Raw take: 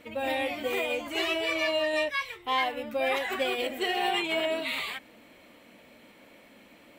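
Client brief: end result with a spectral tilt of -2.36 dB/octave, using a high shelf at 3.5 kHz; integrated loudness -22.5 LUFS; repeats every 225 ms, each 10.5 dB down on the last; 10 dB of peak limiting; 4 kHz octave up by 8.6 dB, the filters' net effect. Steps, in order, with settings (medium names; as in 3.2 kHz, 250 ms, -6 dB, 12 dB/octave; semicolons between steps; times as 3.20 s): treble shelf 3.5 kHz +7.5 dB; peaking EQ 4 kHz +7.5 dB; peak limiter -21.5 dBFS; feedback delay 225 ms, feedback 30%, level -10.5 dB; trim +6.5 dB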